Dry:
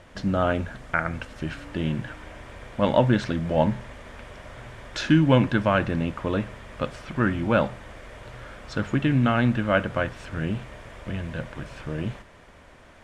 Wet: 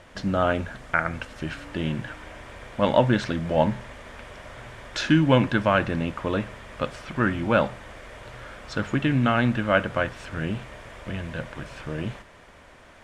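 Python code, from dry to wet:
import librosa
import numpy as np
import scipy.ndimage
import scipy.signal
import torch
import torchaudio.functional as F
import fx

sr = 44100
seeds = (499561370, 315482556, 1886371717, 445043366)

y = fx.low_shelf(x, sr, hz=390.0, db=-4.0)
y = y * librosa.db_to_amplitude(2.0)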